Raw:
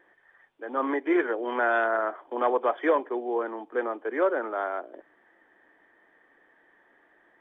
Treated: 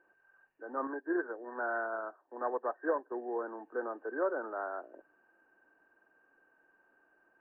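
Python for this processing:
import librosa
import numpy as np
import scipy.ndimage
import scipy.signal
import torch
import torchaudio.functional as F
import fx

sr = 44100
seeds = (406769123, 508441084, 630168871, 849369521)

y = fx.freq_compress(x, sr, knee_hz=1500.0, ratio=4.0)
y = fx.upward_expand(y, sr, threshold_db=-44.0, expansion=1.5, at=(0.87, 3.12))
y = F.gain(torch.from_numpy(y), -8.0).numpy()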